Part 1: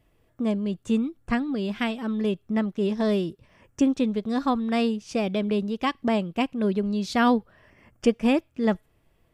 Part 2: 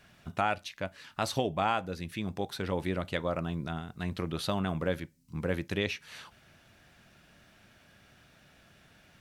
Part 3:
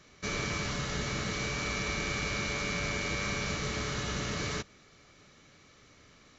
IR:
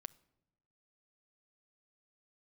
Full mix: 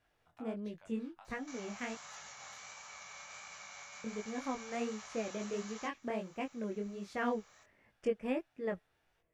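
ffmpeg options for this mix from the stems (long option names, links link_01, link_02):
-filter_complex "[0:a]equalizer=frequency=500:width_type=o:width=1:gain=7,equalizer=frequency=2000:width_type=o:width=1:gain=8,equalizer=frequency=4000:width_type=o:width=1:gain=-7,volume=-14.5dB,asplit=3[link_01][link_02][link_03];[link_01]atrim=end=1.95,asetpts=PTS-STARTPTS,afade=type=out:start_time=1.946:duration=0.004:curve=hsin[link_04];[link_02]atrim=start=1.95:end=4.04,asetpts=PTS-STARTPTS,volume=0[link_05];[link_03]atrim=start=4.04,asetpts=PTS-STARTPTS,afade=type=in:duration=0.004:curve=hsin[link_06];[link_04][link_05][link_06]concat=n=3:v=0:a=1[link_07];[1:a]acompressor=threshold=-37dB:ratio=6,volume=-16.5dB[link_08];[2:a]highpass=frequency=150:poles=1,alimiter=level_in=8.5dB:limit=-24dB:level=0:latency=1:release=472,volume=-8.5dB,aexciter=amount=2.6:drive=6.6:freq=6200,adelay=1250,volume=-3.5dB[link_09];[link_08][link_09]amix=inputs=2:normalize=0,lowshelf=frequency=530:width_type=q:width=3:gain=-14,alimiter=level_in=13.5dB:limit=-24dB:level=0:latency=1:release=127,volume=-13.5dB,volume=0dB[link_10];[link_07][link_10]amix=inputs=2:normalize=0,flanger=delay=18.5:depth=6.2:speed=1.4"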